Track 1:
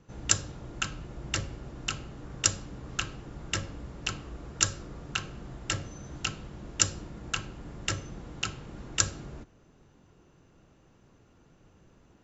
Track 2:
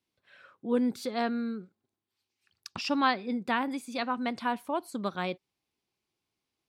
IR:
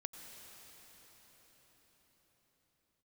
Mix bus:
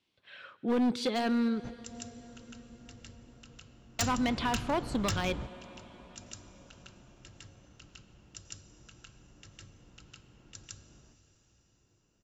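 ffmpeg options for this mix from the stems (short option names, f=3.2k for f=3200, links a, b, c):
-filter_complex "[0:a]acrossover=split=190|3000[a][b][c];[b]acompressor=threshold=-39dB:ratio=6[d];[a][d][c]amix=inputs=3:normalize=0,adelay=1550,volume=1.5dB,asplit=3[e][f][g];[f]volume=-21.5dB[h];[g]volume=-20dB[i];[1:a]equalizer=f=3.1k:w=1.8:g=7,alimiter=limit=-21.5dB:level=0:latency=1:release=46,volume=2.5dB,asplit=3[j][k][l];[j]atrim=end=1.6,asetpts=PTS-STARTPTS,afade=t=out:st=1.596:d=0.004:c=hsin[m];[k]atrim=start=1.6:end=3.99,asetpts=PTS-STARTPTS,volume=0[n];[l]atrim=start=3.99,asetpts=PTS-STARTPTS,afade=t=in:d=0.004:c=hsin[o];[m][n][o]concat=n=3:v=0:a=1,asplit=3[p][q][r];[q]volume=-8dB[s];[r]apad=whole_len=607992[t];[e][t]sidechaingate=range=-33dB:threshold=-48dB:ratio=16:detection=peak[u];[2:a]atrim=start_sample=2205[v];[h][s]amix=inputs=2:normalize=0[w];[w][v]afir=irnorm=-1:irlink=0[x];[i]aecho=0:1:156:1[y];[u][p][x][y]amix=inputs=4:normalize=0,lowpass=6.5k,asoftclip=type=hard:threshold=-24dB"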